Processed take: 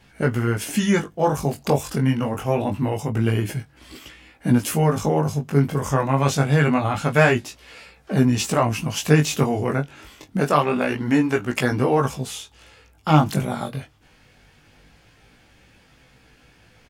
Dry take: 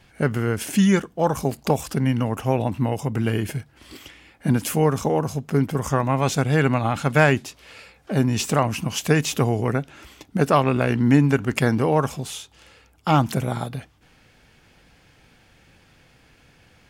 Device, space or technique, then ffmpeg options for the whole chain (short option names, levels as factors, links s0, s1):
double-tracked vocal: -filter_complex "[0:a]asettb=1/sr,asplit=3[s0][s1][s2];[s0]atrim=end=10.384[s3];[s1]atrim=start=10.38:end=11.72,asetpts=PTS-STARTPTS,afade=t=in:d=0.004:c=qsin,afade=t=out:st=1.336:d=0.004:c=qsin,lowshelf=f=190:g=-8.5[s4];[s2]atrim=start=11.716[s5];[s3][s4]acrossfade=d=0.004:c1=hsin:c2=qsin[s6];[s6][s5]acrossfade=d=0.004:c1=qsin:c2=hsin,asplit=2[s7][s8];[s8]adelay=20,volume=0.251[s9];[s7][s9]amix=inputs=2:normalize=0,flanger=delay=15.5:depth=6.6:speed=0.25,volume=1.5"